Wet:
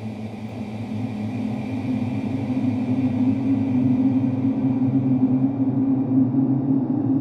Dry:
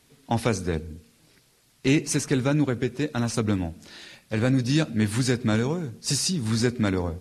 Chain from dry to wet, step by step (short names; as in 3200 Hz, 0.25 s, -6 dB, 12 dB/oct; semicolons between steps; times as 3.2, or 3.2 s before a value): spectral gain 3.28–4.47, 290–1900 Hz -18 dB; treble ducked by the level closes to 750 Hz, closed at -21 dBFS; limiter -22.5 dBFS, peak gain reduction 12 dB; small resonant body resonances 280/940 Hz, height 12 dB, ringing for 40 ms; band noise 170–820 Hz -41 dBFS; Paulstretch 18×, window 0.50 s, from 4.27; on a send: echo 0.49 s -5 dB; on the sum: bloom reverb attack 1.46 s, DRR 3 dB